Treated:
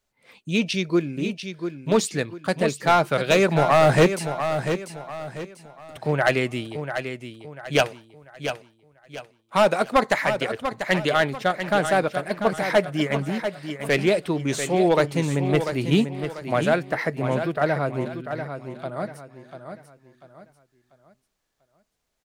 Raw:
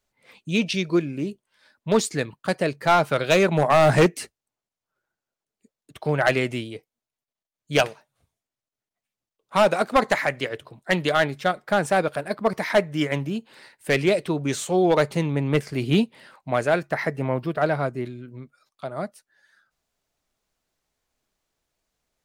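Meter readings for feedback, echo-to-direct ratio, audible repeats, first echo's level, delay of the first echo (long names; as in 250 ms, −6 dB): 35%, −8.0 dB, 3, −8.5 dB, 692 ms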